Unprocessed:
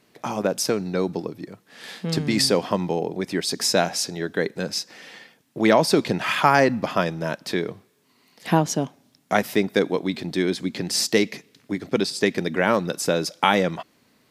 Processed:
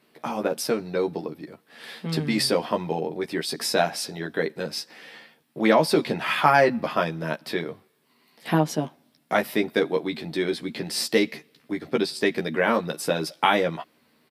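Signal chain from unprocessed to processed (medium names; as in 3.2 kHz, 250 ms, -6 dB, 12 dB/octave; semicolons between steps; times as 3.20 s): high-pass 160 Hz 6 dB/octave; peaking EQ 6.6 kHz -10 dB 0.53 oct; doubling 13 ms -3.5 dB; trim -2.5 dB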